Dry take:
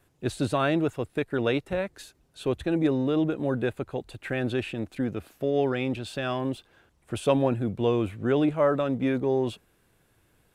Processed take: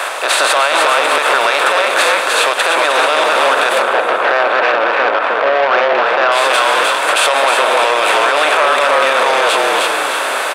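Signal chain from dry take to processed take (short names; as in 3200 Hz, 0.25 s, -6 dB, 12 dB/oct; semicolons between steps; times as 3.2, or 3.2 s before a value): per-bin compression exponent 0.4; HPF 730 Hz 24 dB/oct; frequency-shifting echo 0.309 s, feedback 35%, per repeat -41 Hz, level -4 dB; crackle 18/s -43 dBFS; 3.82–6.32 LPF 1500 Hz 12 dB/oct; plate-style reverb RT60 2.3 s, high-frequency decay 1×, DRR 9.5 dB; maximiser +21.5 dB; core saturation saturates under 1200 Hz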